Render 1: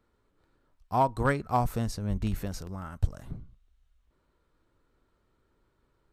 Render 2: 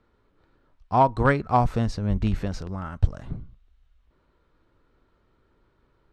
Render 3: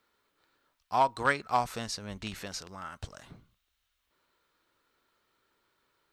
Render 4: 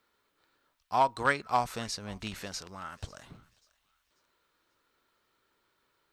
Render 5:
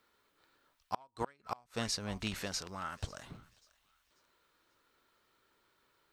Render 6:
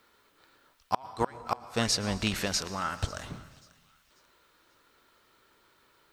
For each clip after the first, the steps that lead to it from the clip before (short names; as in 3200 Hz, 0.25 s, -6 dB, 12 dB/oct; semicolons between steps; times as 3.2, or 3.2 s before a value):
LPF 4400 Hz 12 dB/oct; gain +6 dB
tilt +4.5 dB/oct; gain -5 dB
thinning echo 0.54 s, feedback 37%, high-pass 1100 Hz, level -22 dB
flipped gate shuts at -22 dBFS, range -35 dB; gain +1 dB
plate-style reverb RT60 1.3 s, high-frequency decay 1×, pre-delay 0.1 s, DRR 15 dB; gain +8.5 dB